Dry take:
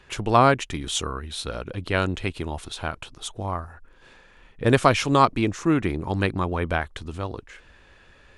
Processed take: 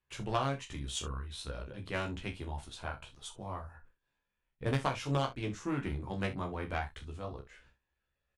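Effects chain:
harmonic generator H 3 −13 dB, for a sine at −2.5 dBFS
downward compressor 5 to 1, threshold −25 dBFS, peak gain reduction 11 dB
multi-voice chorus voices 6, 0.25 Hz, delay 15 ms, depth 1.1 ms
noise gate with hold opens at −48 dBFS
on a send: ambience of single reflections 29 ms −8.5 dB, 62 ms −15 dB

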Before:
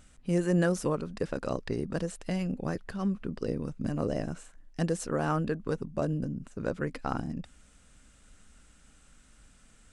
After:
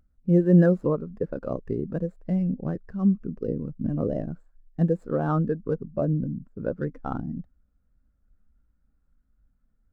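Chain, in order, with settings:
running median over 15 samples
every bin expanded away from the loudest bin 1.5 to 1
level +8.5 dB

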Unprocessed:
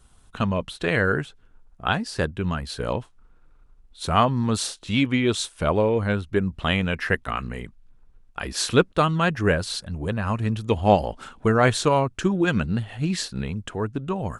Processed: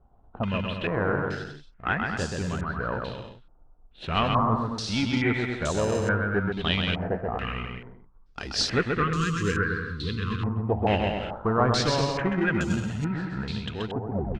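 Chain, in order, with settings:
turntable brake at the end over 0.45 s
in parallel at −9 dB: decimation without filtering 39×
on the sum: soft clipping −9 dBFS, distortion −18 dB
time-frequency box erased 0:08.79–0:10.43, 500–1,000 Hz
on a send: bouncing-ball delay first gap 130 ms, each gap 0.75×, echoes 5
on the sum: low-pass on a step sequencer 2.3 Hz 770–7,000 Hz
level −7 dB

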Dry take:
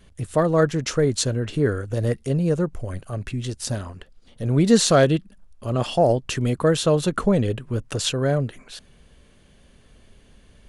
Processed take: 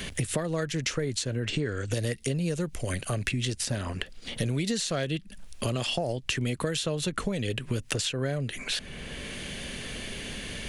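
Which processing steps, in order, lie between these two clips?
high shelf with overshoot 1,600 Hz +7 dB, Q 1.5
downward compressor 6 to 1, threshold −30 dBFS, peak gain reduction 18.5 dB
0:01.49–0:01.91: linear-phase brick-wall low-pass 8,700 Hz
multiband upward and downward compressor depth 70%
level +3 dB

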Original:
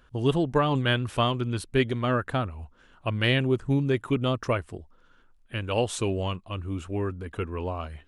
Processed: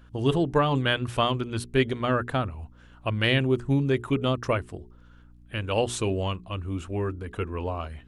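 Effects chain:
mains-hum notches 60/120/180/240/300/360/420 Hz
mains hum 60 Hz, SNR 26 dB
level +1 dB

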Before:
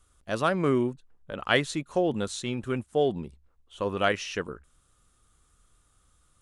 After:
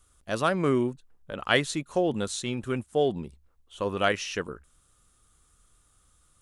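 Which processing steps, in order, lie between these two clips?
high-shelf EQ 5,600 Hz +5 dB

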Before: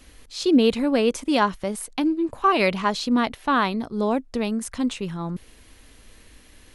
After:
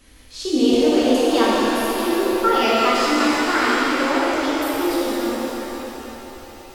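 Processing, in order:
pitch glide at a constant tempo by +7.5 semitones starting unshifted
reverb with rising layers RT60 3.8 s, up +7 semitones, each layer −8 dB, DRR −7.5 dB
level −3 dB

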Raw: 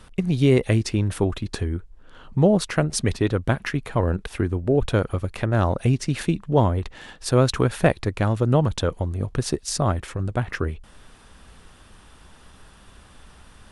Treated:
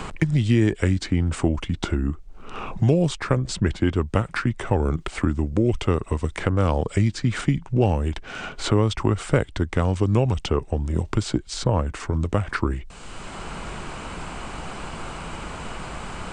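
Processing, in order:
speed change −16%
multiband upward and downward compressor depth 70%

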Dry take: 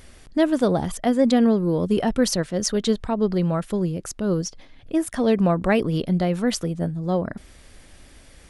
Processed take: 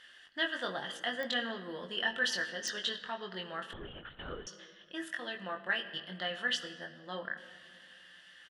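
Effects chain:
0:05.15–0:06.06: output level in coarse steps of 22 dB
pair of resonant band-passes 2,300 Hz, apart 0.77 octaves
double-tracking delay 21 ms −4.5 dB
rectangular room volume 3,700 cubic metres, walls mixed, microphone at 0.86 metres
0:03.73–0:04.47: linear-prediction vocoder at 8 kHz whisper
digital clicks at 0:01.23/0:02.68, −29 dBFS
level +4 dB

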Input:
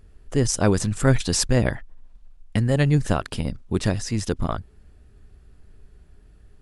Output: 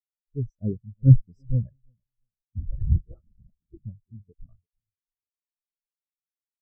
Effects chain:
echo with a time of its own for lows and highs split 660 Hz, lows 341 ms, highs 206 ms, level −10.5 dB
0:02.58–0:03.77: linear-prediction vocoder at 8 kHz whisper
every bin expanded away from the loudest bin 4 to 1
level +1 dB

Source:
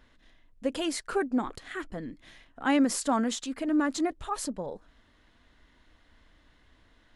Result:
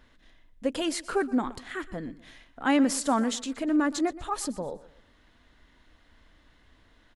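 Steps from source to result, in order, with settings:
repeating echo 122 ms, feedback 34%, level −18 dB
level +1.5 dB

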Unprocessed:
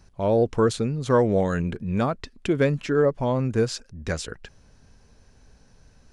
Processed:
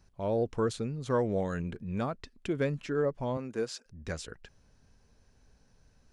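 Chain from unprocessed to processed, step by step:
0:03.37–0:03.86: high-pass filter 250 Hz 12 dB per octave
level −9 dB

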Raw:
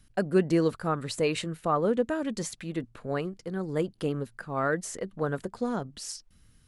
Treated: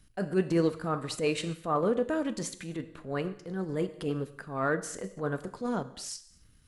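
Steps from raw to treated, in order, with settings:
reverb whose tail is shaped and stops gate 290 ms falling, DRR 9.5 dB
transient designer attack −8 dB, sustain −4 dB

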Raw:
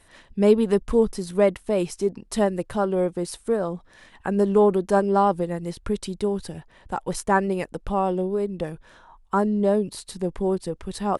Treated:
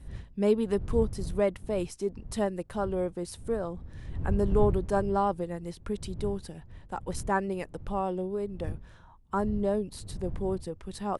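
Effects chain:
wind on the microphone 84 Hz −29 dBFS
level −7.5 dB

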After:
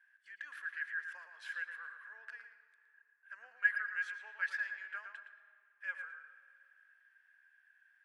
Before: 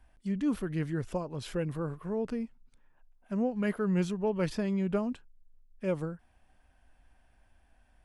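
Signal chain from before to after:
four-pole ladder high-pass 1,600 Hz, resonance 90%
high-shelf EQ 4,800 Hz −9 dB
tape delay 113 ms, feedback 35%, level −6 dB, low-pass 2,800 Hz
on a send at −13.5 dB: convolution reverb RT60 2.5 s, pre-delay 50 ms
on the sum: level +5 dB

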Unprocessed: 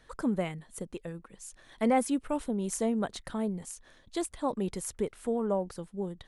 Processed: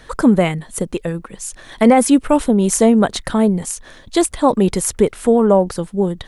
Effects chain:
boost into a limiter +18.5 dB
level −1 dB

